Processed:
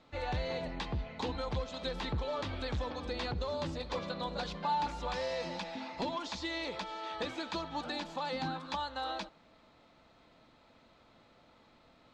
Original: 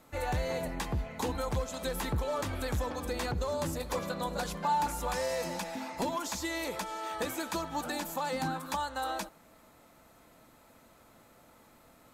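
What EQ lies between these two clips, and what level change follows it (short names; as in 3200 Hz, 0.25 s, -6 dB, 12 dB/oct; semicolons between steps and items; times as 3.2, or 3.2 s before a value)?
ladder low-pass 4800 Hz, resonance 40%; bell 1600 Hz -2 dB; +5.0 dB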